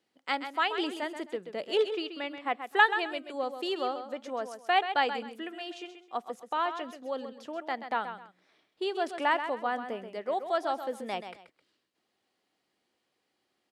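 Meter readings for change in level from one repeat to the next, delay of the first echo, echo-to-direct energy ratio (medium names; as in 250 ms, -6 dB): -11.5 dB, 131 ms, -9.0 dB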